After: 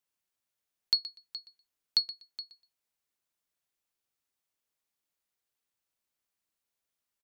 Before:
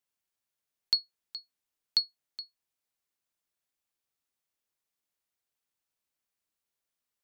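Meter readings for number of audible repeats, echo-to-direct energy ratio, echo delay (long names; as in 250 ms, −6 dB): 2, −16.0 dB, 122 ms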